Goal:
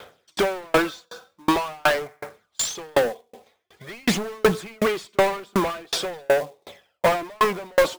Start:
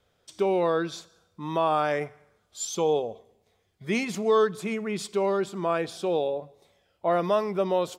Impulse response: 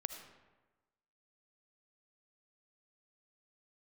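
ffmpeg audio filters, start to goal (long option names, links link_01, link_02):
-filter_complex "[0:a]aphaser=in_gain=1:out_gain=1:delay=4.1:decay=0.48:speed=0.46:type=sinusoidal,asplit=2[link_01][link_02];[link_02]highpass=frequency=720:poles=1,volume=35dB,asoftclip=type=tanh:threshold=-5dB[link_03];[link_01][link_03]amix=inputs=2:normalize=0,lowpass=frequency=2700:poles=1,volume=-6dB,acrusher=bits=3:mode=log:mix=0:aa=0.000001,aeval=exprs='val(0)*pow(10,-39*if(lt(mod(2.7*n/s,1),2*abs(2.7)/1000),1-mod(2.7*n/s,1)/(2*abs(2.7)/1000),(mod(2.7*n/s,1)-2*abs(2.7)/1000)/(1-2*abs(2.7)/1000))/20)':channel_layout=same"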